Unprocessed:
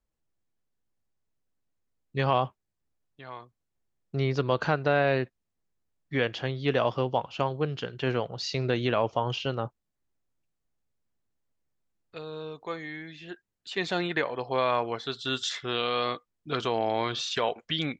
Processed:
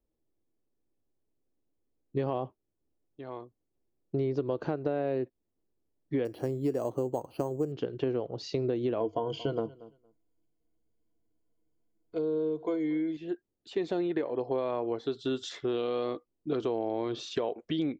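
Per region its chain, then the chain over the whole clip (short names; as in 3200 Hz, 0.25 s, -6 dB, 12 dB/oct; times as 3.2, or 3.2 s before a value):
6.25–7.72 air absorption 300 m + careless resampling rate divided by 6×, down filtered, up hold
9–13.17 ripple EQ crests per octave 1.8, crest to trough 13 dB + feedback echo 0.23 s, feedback 15%, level -23 dB
whole clip: EQ curve 190 Hz 0 dB, 320 Hz +11 dB, 1500 Hz -9 dB; compressor, threshold -27 dBFS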